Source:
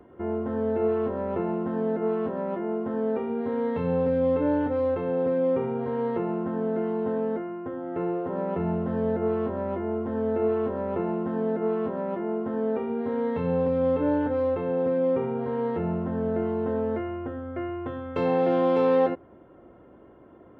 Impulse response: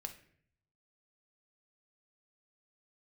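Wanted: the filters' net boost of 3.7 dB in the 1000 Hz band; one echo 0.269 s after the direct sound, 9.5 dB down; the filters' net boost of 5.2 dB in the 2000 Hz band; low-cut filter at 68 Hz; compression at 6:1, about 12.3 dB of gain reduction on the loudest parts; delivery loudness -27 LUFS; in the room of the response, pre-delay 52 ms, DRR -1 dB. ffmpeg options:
-filter_complex "[0:a]highpass=68,equalizer=f=1k:t=o:g=3.5,equalizer=f=2k:t=o:g=5.5,acompressor=threshold=-30dB:ratio=6,aecho=1:1:269:0.335,asplit=2[a][b];[1:a]atrim=start_sample=2205,adelay=52[c];[b][c]afir=irnorm=-1:irlink=0,volume=4dB[d];[a][d]amix=inputs=2:normalize=0,volume=2.5dB"

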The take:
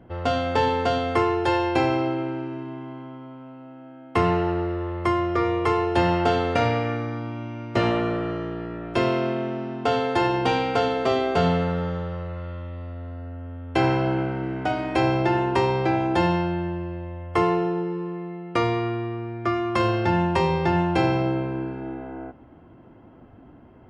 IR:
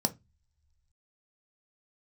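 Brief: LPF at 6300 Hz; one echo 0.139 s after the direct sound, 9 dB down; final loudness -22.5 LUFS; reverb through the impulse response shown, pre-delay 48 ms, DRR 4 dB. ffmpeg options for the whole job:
-filter_complex "[0:a]lowpass=6.3k,aecho=1:1:139:0.355,asplit=2[a][b];[1:a]atrim=start_sample=2205,adelay=48[c];[b][c]afir=irnorm=-1:irlink=0,volume=-9.5dB[d];[a][d]amix=inputs=2:normalize=0,volume=-3dB"

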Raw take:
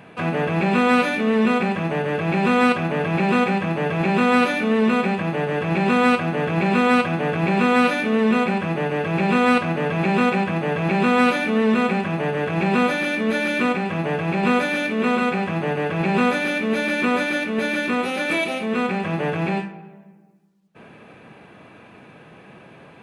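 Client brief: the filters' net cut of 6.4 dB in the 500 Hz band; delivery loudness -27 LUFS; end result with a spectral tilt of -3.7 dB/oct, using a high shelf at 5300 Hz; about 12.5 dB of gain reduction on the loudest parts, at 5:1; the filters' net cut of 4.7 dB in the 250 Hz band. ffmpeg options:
-af "equalizer=f=250:t=o:g=-4.5,equalizer=f=500:t=o:g=-6.5,highshelf=f=5.3k:g=8,acompressor=threshold=-30dB:ratio=5,volume=5dB"

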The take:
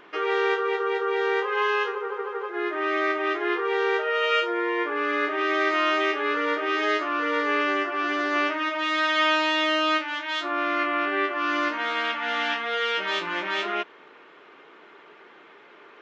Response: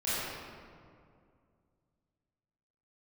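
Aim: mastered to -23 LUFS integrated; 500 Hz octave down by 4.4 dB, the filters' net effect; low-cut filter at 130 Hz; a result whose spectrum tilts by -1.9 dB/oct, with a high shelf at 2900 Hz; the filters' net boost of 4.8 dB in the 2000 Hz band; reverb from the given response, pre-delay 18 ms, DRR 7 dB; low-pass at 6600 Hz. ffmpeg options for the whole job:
-filter_complex "[0:a]highpass=130,lowpass=6.6k,equalizer=f=500:t=o:g=-6,equalizer=f=2k:t=o:g=7.5,highshelf=f=2.9k:g=-4,asplit=2[a][b];[1:a]atrim=start_sample=2205,adelay=18[c];[b][c]afir=irnorm=-1:irlink=0,volume=-16dB[d];[a][d]amix=inputs=2:normalize=0,volume=-1dB"

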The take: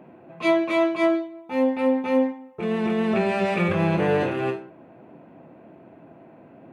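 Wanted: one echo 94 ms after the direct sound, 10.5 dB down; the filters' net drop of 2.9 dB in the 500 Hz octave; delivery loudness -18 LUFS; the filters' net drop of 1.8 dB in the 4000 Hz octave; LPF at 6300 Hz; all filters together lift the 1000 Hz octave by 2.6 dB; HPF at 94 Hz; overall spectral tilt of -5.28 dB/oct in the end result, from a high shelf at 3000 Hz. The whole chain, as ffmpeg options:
-af "highpass=94,lowpass=6.3k,equalizer=f=500:t=o:g=-6,equalizer=f=1k:t=o:g=5.5,highshelf=f=3k:g=4,equalizer=f=4k:t=o:g=-5.5,aecho=1:1:94:0.299,volume=6dB"

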